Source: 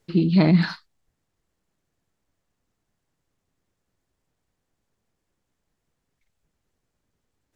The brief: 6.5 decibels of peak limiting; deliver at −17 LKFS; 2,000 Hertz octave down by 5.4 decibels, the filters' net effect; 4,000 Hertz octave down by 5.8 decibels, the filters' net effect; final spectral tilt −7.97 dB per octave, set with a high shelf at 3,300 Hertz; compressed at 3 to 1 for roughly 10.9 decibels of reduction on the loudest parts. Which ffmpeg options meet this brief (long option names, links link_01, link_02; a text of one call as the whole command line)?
ffmpeg -i in.wav -af "equalizer=frequency=2000:width_type=o:gain=-6.5,highshelf=frequency=3300:gain=6,equalizer=frequency=4000:width_type=o:gain=-9,acompressor=threshold=-28dB:ratio=3,volume=16dB,alimiter=limit=-8.5dB:level=0:latency=1" out.wav